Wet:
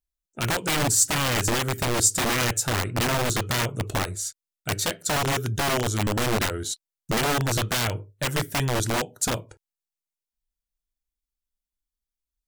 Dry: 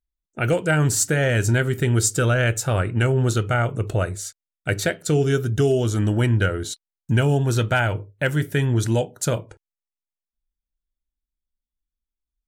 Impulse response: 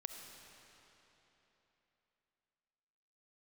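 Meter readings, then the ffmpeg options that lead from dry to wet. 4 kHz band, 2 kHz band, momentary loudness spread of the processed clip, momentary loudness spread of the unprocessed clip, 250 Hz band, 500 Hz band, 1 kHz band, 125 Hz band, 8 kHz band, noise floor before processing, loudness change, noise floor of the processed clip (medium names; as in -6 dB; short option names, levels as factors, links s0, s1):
+5.0 dB, -2.5 dB, 9 LU, 8 LU, -5.5 dB, -6.5 dB, +2.0 dB, -8.5 dB, +2.5 dB, under -85 dBFS, -3.0 dB, under -85 dBFS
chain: -filter_complex "[0:a]acrossover=split=3900[s0][s1];[s0]aeval=exprs='(mod(5.62*val(0)+1,2)-1)/5.62':c=same[s2];[s1]acontrast=66[s3];[s2][s3]amix=inputs=2:normalize=0,volume=0.631"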